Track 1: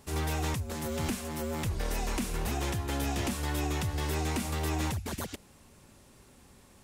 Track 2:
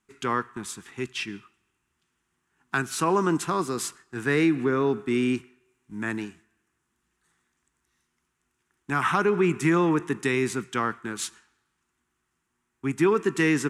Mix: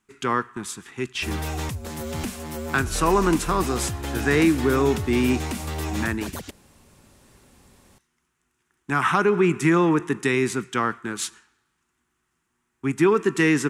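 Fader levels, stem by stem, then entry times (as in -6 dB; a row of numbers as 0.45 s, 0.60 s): +2.5 dB, +3.0 dB; 1.15 s, 0.00 s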